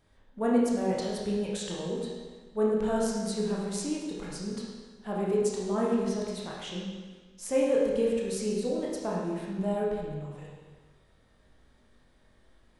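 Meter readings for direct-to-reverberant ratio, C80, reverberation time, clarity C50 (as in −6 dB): −4.5 dB, 2.0 dB, 1.4 s, −0.5 dB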